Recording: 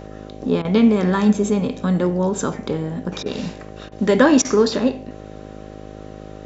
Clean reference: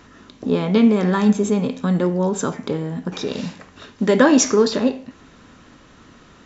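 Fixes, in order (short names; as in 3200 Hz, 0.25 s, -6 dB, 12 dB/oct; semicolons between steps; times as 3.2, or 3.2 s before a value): de-hum 52.1 Hz, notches 12; notch 770 Hz, Q 30; interpolate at 0.62/3.23/3.89/4.42, 27 ms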